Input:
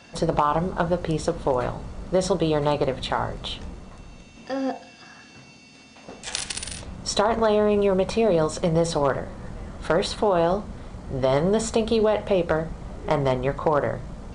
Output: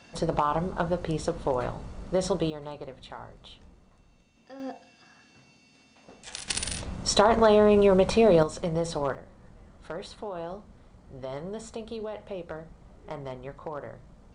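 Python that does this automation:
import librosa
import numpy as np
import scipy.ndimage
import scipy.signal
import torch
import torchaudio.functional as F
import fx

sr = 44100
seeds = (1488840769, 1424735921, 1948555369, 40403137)

y = fx.gain(x, sr, db=fx.steps((0.0, -4.5), (2.5, -17.0), (4.6, -10.0), (6.48, 1.0), (8.43, -7.0), (9.15, -15.5)))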